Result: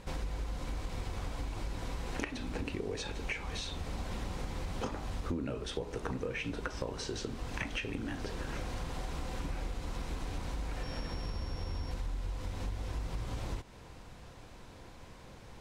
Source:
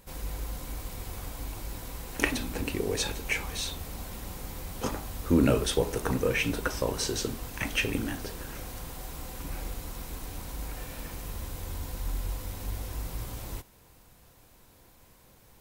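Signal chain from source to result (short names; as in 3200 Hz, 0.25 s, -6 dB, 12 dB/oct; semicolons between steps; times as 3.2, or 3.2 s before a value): 10.83–11.91 sample sorter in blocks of 8 samples; compressor 16:1, threshold -40 dBFS, peak gain reduction 23 dB; air absorption 94 m; gain +7.5 dB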